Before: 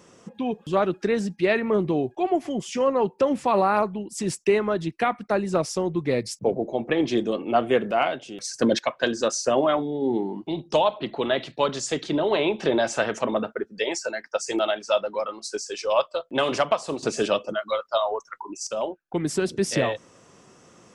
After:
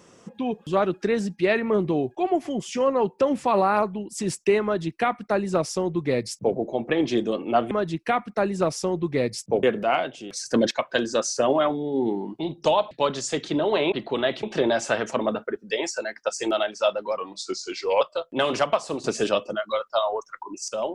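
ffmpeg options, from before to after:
-filter_complex "[0:a]asplit=8[a][b][c][d][e][f][g][h];[a]atrim=end=7.712[i];[b]atrim=start=4.638:end=6.562[j];[c]atrim=start=7.708:end=10.992[k];[d]atrim=start=11.498:end=12.512[l];[e]atrim=start=10.988:end=11.502[m];[f]atrim=start=12.508:end=15.254[n];[g]atrim=start=15.25:end=16,asetpts=PTS-STARTPTS,asetrate=39249,aresample=44100[o];[h]atrim=start=15.996[p];[i][j]acrossfade=d=0.004:c1=hsin:c2=hsin[q];[q][k]acrossfade=d=0.004:c1=hsin:c2=hsin[r];[r][l]acrossfade=d=0.004:c1=hsin:c2=hsin[s];[s][m]acrossfade=d=0.004:c1=hsin:c2=hsin[t];[t][n]acrossfade=d=0.004:c1=hsin:c2=hsin[u];[u][o]acrossfade=d=0.004:c1=hsin:c2=hsin[v];[v][p]acrossfade=d=0.004:c1=hsin:c2=hsin"

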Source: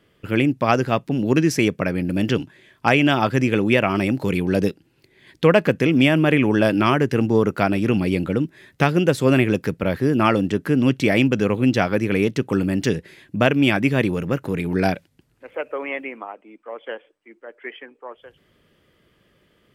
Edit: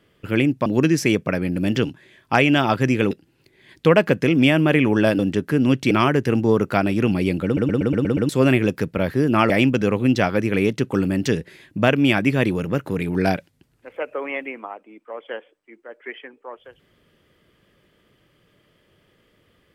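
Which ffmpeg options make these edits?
-filter_complex "[0:a]asplit=13[a][b][c][d][e][f][g][h][i][j][k][l][m];[a]atrim=end=0.662[n];[b]atrim=start=1.188:end=3.642[o];[c]atrim=start=4.688:end=6.772[p];[d]atrim=start=10.358:end=11.082[q];[e]atrim=start=6.768:end=8.432[r];[f]atrim=start=8.308:end=8.432[s];[g]atrim=start=8.308:end=8.432[t];[h]atrim=start=8.308:end=8.432[u];[i]atrim=start=8.308:end=8.432[v];[j]atrim=start=8.308:end=8.432[w];[k]atrim=start=8.308:end=8.432[x];[l]atrim=start=9.148:end=10.362[y];[m]atrim=start=11.078[z];[n][o]acrossfade=d=0.004:c1=hsin:c2=hsin[aa];[aa][p]acrossfade=d=0.004:c1=hsin:c2=hsin[ab];[ab][q]acrossfade=d=0.004:c1=hsin:c2=hsin[ac];[ac][r]acrossfade=d=0.004:c1=hsin:c2=hsin[ad];[ad][s]acrossfade=d=0.004:c1=hsin:c2=hsin[ae];[ae][t]acrossfade=d=0.004:c1=hsin:c2=hsin[af];[af][u]acrossfade=d=0.004:c1=hsin:c2=hsin[ag];[ag][v]acrossfade=d=0.004:c1=hsin:c2=hsin[ah];[ah][w]acrossfade=d=0.004:c1=hsin:c2=hsin[ai];[ai][x]acrossfade=d=0.004:c1=hsin:c2=hsin[aj];[aj][y]acrossfade=d=0.004:c1=hsin:c2=hsin[ak];[ak][z]acrossfade=d=0.004:c1=hsin:c2=hsin"

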